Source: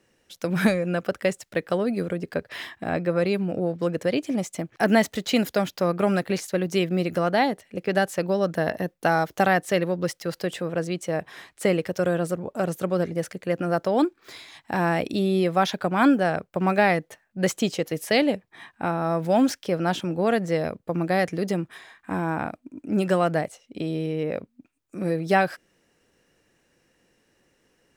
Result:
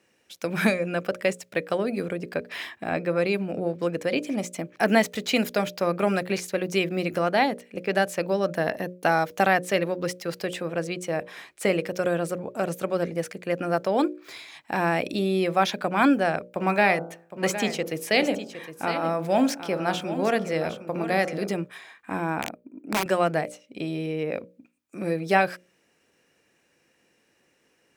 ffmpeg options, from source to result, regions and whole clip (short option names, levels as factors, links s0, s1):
-filter_complex "[0:a]asettb=1/sr,asplit=3[s0][s1][s2];[s0]atrim=end=16.514[s3];[s1]atrim=start=16.51:end=21.56,asetpts=PTS-STARTPTS,afade=t=in:d=0.004:c=qsin,afade=t=out:st=5.046:d=0.004:c=qsin,bandreject=f=56.22:t=h:w=4,bandreject=f=112.44:t=h:w=4,bandreject=f=168.66:t=h:w=4,bandreject=f=224.88:t=h:w=4,bandreject=f=281.1:t=h:w=4,bandreject=f=337.32:t=h:w=4,bandreject=f=393.54:t=h:w=4,bandreject=f=449.76:t=h:w=4,bandreject=f=505.98:t=h:w=4,bandreject=f=562.2:t=h:w=4,bandreject=f=618.42:t=h:w=4,bandreject=f=674.64:t=h:w=4,bandreject=f=730.86:t=h:w=4,bandreject=f=787.08:t=h:w=4,bandreject=f=843.3:t=h:w=4,bandreject=f=899.52:t=h:w=4,bandreject=f=955.74:t=h:w=4,bandreject=f=1011.96:t=h:w=4,bandreject=f=1068.18:t=h:w=4,bandreject=f=1124.4:t=h:w=4,bandreject=f=1180.62:t=h:w=4,bandreject=f=1236.84:t=h:w=4,bandreject=f=1293.06:t=h:w=4,bandreject=f=1349.28:t=h:w=4,bandreject=f=1405.5:t=h:w=4,bandreject=f=1461.72:t=h:w=4,bandreject=f=1517.94:t=h:w=4,aecho=1:1:762:0.266,atrim=end_sample=222705[s4];[s2]atrim=start=21.556[s5];[s3][s4]acrossfade=d=0.004:c1=hsin:c2=qsin[s6];[s6][s5]acrossfade=d=0.004:c1=qsin:c2=hsin,asettb=1/sr,asplit=3[s7][s8][s9];[s7]atrim=end=22.414[s10];[s8]atrim=start=22.41:end=23.06,asetpts=PTS-STARTPTS,afade=t=in:d=0.004:c=qsin,afade=t=out:st=0.646:d=0.004:c=qsin,highpass=160,equalizer=f=5200:t=o:w=3:g=-14.5,aeval=exprs='(mod(8.41*val(0)+1,2)-1)/8.41':c=same[s11];[s9]atrim=start=23.056[s12];[s10][s11]acrossfade=d=0.004:c1=hsin:c2=qsin[s13];[s13][s12]acrossfade=d=0.004:c1=qsin:c2=hsin,highpass=f=170:p=1,equalizer=f=2400:t=o:w=0.21:g=6,bandreject=f=60:t=h:w=6,bandreject=f=120:t=h:w=6,bandreject=f=180:t=h:w=6,bandreject=f=240:t=h:w=6,bandreject=f=300:t=h:w=6,bandreject=f=360:t=h:w=6,bandreject=f=420:t=h:w=6,bandreject=f=480:t=h:w=6,bandreject=f=540:t=h:w=6,bandreject=f=600:t=h:w=6"